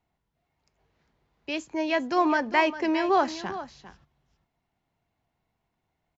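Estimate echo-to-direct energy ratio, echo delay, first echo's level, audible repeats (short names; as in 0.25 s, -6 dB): -13.5 dB, 0.401 s, -13.5 dB, 1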